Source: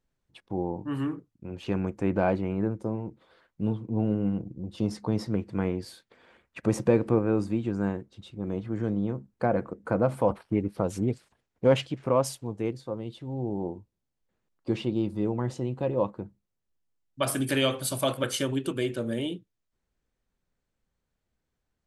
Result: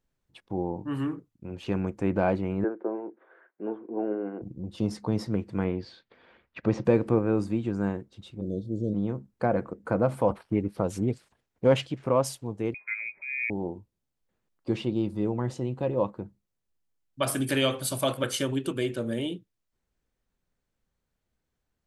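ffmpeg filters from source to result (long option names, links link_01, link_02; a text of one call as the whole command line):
ffmpeg -i in.wav -filter_complex "[0:a]asettb=1/sr,asplit=3[link_01][link_02][link_03];[link_01]atrim=end=2.644[link_04];[link_02]atrim=start=2.64:end=4.42,asetpts=PTS-STARTPTS,afade=type=in:duration=0.004:curve=qsin,afade=type=out:start_time=1.776:duration=0.004:curve=qsin,highpass=frequency=310:width=0.5412,highpass=frequency=310:width=1.3066,equalizer=frequency=370:width_type=q:width=4:gain=8,equalizer=frequency=690:width_type=q:width=4:gain=4,equalizer=frequency=1600:width_type=q:width=4:gain=9,lowpass=frequency=2100:width=0.5412,lowpass=frequency=2100:width=1.3066[link_05];[link_03]atrim=start=4.416[link_06];[link_04][link_05]acrossfade=duration=0.004:curve1=hsin:curve2=qsin[link_07];[link_07][link_06]acrossfade=duration=0.004:curve1=qsin:curve2=hsin,asettb=1/sr,asplit=3[link_08][link_09][link_10];[link_08]atrim=end=5.644[link_11];[link_09]atrim=start=5.64:end=6.85,asetpts=PTS-STARTPTS,afade=type=in:duration=0.004:curve=qsin,afade=type=out:start_time=1.206:duration=0.004:curve=qsin,lowpass=frequency=4700:width=0.5412,lowpass=frequency=4700:width=1.3066[link_12];[link_10]atrim=start=6.846[link_13];[link_11][link_12]acrossfade=duration=0.004:curve1=hsin:curve2=qsin[link_14];[link_14][link_13]acrossfade=duration=0.004:curve1=qsin:curve2=hsin,asplit=3[link_15][link_16][link_17];[link_15]afade=type=out:start_time=8.4:duration=0.02[link_18];[link_16]asuperstop=centerf=1500:order=20:qfactor=0.52,afade=type=in:start_time=8.4:duration=0.02,afade=type=out:start_time=8.93:duration=0.02[link_19];[link_17]afade=type=in:start_time=8.93:duration=0.02[link_20];[link_18][link_19][link_20]amix=inputs=3:normalize=0,asettb=1/sr,asplit=3[link_21][link_22][link_23];[link_21]atrim=end=12.744[link_24];[link_22]atrim=start=12.74:end=13.5,asetpts=PTS-STARTPTS,afade=type=in:duration=0.004:curve=qsin,afade=type=out:start_time=0.756:duration=0.004:curve=qsin,lowpass=frequency=2200:width_type=q:width=0.5098,lowpass=frequency=2200:width_type=q:width=0.6013,lowpass=frequency=2200:width_type=q:width=0.9,lowpass=frequency=2200:width_type=q:width=2.563,afreqshift=-2600[link_25];[link_23]atrim=start=13.496[link_26];[link_24][link_25]acrossfade=duration=0.004:curve1=hsin:curve2=qsin[link_27];[link_27][link_26]acrossfade=duration=0.004:curve1=qsin:curve2=hsin" out.wav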